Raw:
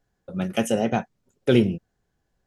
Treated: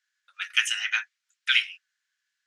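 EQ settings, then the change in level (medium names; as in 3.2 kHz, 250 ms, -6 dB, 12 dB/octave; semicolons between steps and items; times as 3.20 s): low-pass 7.1 kHz 12 dB/octave; dynamic bell 2.3 kHz, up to +7 dB, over -42 dBFS, Q 0.71; steep high-pass 1.5 kHz 36 dB/octave; +5.0 dB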